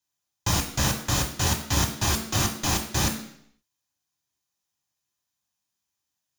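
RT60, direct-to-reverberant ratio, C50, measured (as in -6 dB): 0.70 s, 3.0 dB, 9.0 dB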